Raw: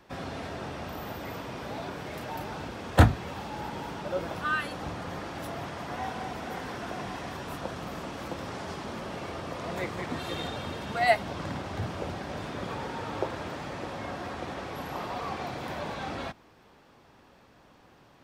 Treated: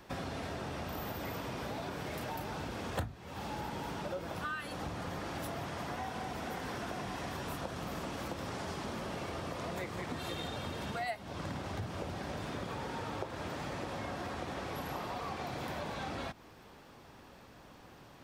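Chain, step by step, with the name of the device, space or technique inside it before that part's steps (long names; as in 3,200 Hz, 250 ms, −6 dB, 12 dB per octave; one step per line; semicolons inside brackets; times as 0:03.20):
ASMR close-microphone chain (low-shelf EQ 150 Hz +3 dB; downward compressor 6 to 1, threshold −38 dBFS, peak gain reduction 25.5 dB; high-shelf EQ 6,700 Hz +6 dB)
level +1.5 dB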